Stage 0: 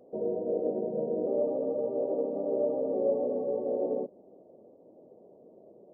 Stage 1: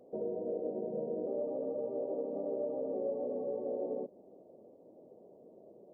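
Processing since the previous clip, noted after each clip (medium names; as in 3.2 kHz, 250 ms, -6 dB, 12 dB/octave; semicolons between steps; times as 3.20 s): compression 2.5:1, threshold -33 dBFS, peak gain reduction 7.5 dB; trim -2 dB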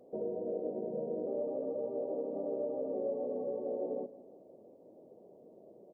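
feedback delay 167 ms, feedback 43%, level -17 dB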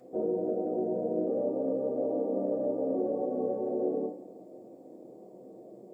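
reverberation RT60 0.45 s, pre-delay 3 ms, DRR -4 dB; trim +6 dB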